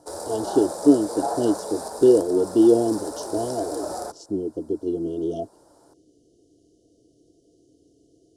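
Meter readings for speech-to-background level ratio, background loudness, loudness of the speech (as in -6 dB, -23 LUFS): 9.5 dB, -32.0 LUFS, -22.5 LUFS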